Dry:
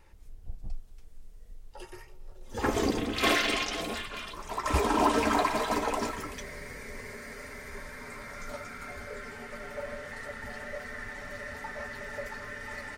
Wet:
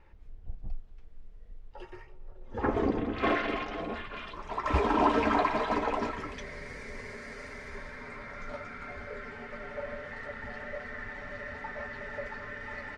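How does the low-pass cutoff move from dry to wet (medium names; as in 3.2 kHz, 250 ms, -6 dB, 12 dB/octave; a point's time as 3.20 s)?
1.98 s 2.7 kHz
2.65 s 1.6 kHz
3.86 s 1.6 kHz
4.33 s 3 kHz
6.05 s 3 kHz
6.75 s 5.6 kHz
7.54 s 5.6 kHz
8.21 s 3.2 kHz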